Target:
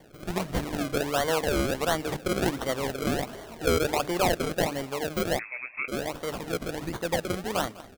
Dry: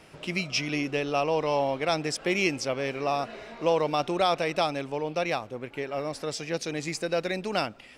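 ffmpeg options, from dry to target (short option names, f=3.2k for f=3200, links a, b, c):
-filter_complex "[0:a]bandreject=f=50:t=h:w=6,bandreject=f=100:t=h:w=6,bandreject=f=150:t=h:w=6,bandreject=f=200:t=h:w=6,bandreject=f=250:t=h:w=6,bandreject=f=300:t=h:w=6,acrusher=samples=33:mix=1:aa=0.000001:lfo=1:lforange=33:lforate=1.4,asplit=2[a][b];[b]aecho=0:1:201:0.106[c];[a][c]amix=inputs=2:normalize=0,asettb=1/sr,asplit=3[d][e][f];[d]atrim=end=5.394[g];[e]atrim=start=5.39:end=5.88,asetpts=PTS-STARTPTS,afade=t=in:d=0.004:c=qsin,afade=t=out:st=0.486:d=0.004:c=qsin,lowpass=f=2.3k:t=q:w=0.5098,lowpass=f=2.3k:t=q:w=0.6013,lowpass=f=2.3k:t=q:w=0.9,lowpass=f=2.3k:t=q:w=2.563,afreqshift=-2700[h];[f]atrim=start=5.876[i];[g][h]acrossfade=d=0.004:c1=hsin:c2=qsin[j];[j][i]acrossfade=d=0.004:c1=qsin:c2=hsin"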